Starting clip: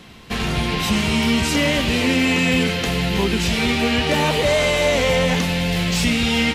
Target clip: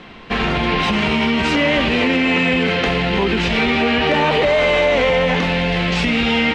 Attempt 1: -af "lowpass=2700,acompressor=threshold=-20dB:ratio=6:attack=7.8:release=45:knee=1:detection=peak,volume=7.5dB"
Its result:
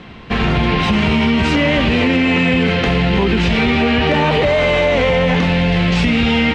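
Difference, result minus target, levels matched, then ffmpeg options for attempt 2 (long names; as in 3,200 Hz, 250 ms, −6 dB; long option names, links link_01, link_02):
125 Hz band +5.0 dB
-af "lowpass=2700,acompressor=threshold=-20dB:ratio=6:attack=7.8:release=45:knee=1:detection=peak,equalizer=frequency=95:width_type=o:width=1.9:gain=-10.5,volume=7.5dB"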